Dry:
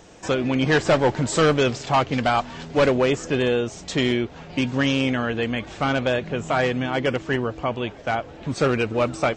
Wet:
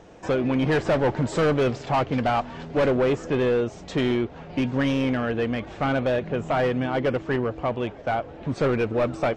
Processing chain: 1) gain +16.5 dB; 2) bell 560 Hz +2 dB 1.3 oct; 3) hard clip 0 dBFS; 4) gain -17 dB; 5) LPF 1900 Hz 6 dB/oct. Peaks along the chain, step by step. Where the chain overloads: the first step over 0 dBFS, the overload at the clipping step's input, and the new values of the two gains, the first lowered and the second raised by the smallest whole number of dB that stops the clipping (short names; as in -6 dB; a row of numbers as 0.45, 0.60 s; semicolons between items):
+8.0, +9.5, 0.0, -17.0, -17.0 dBFS; step 1, 9.5 dB; step 1 +6.5 dB, step 4 -7 dB